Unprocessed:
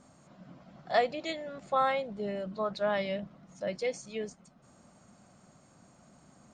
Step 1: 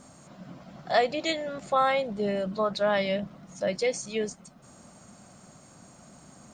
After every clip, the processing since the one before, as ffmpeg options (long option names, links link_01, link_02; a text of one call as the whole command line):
ffmpeg -i in.wav -filter_complex "[0:a]asplit=2[link_01][link_02];[link_02]alimiter=level_in=1.5dB:limit=-24dB:level=0:latency=1:release=194,volume=-1.5dB,volume=1.5dB[link_03];[link_01][link_03]amix=inputs=2:normalize=0,highshelf=frequency=5500:gain=7" out.wav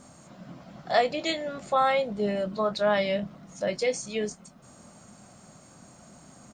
ffmpeg -i in.wav -filter_complex "[0:a]asplit=2[link_01][link_02];[link_02]adelay=24,volume=-11dB[link_03];[link_01][link_03]amix=inputs=2:normalize=0" out.wav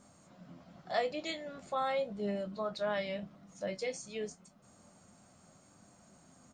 ffmpeg -i in.wav -af "flanger=delay=9.9:depth=1.8:regen=62:speed=0.85:shape=sinusoidal,volume=-5.5dB" out.wav